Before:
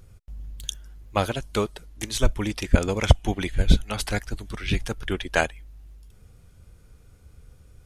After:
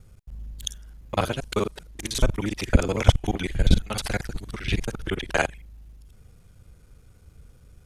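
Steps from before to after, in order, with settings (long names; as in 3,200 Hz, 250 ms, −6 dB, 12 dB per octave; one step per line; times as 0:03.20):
reversed piece by piece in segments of 39 ms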